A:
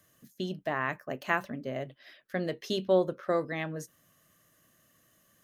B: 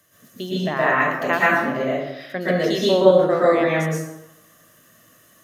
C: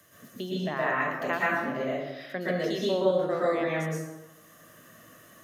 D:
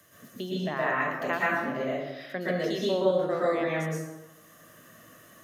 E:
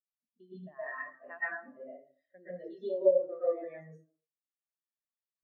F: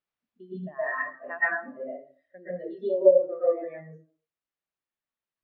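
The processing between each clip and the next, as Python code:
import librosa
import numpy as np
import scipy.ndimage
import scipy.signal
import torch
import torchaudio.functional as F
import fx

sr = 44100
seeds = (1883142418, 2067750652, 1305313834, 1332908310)

y1 = fx.low_shelf(x, sr, hz=200.0, db=-7.0)
y1 = fx.rev_plate(y1, sr, seeds[0], rt60_s=0.91, hf_ratio=0.65, predelay_ms=105, drr_db=-8.0)
y1 = y1 * librosa.db_to_amplitude(5.5)
y2 = fx.band_squash(y1, sr, depth_pct=40)
y2 = y2 * librosa.db_to_amplitude(-9.0)
y3 = y2
y4 = fx.tilt_eq(y3, sr, slope=1.5)
y4 = fx.room_flutter(y4, sr, wall_m=11.1, rt60_s=0.21)
y4 = fx.spectral_expand(y4, sr, expansion=2.5)
y5 = scipy.signal.sosfilt(scipy.signal.butter(2, 2800.0, 'lowpass', fs=sr, output='sos'), y4)
y5 = fx.rider(y5, sr, range_db=4, speed_s=2.0)
y5 = y5 * librosa.db_to_amplitude(6.5)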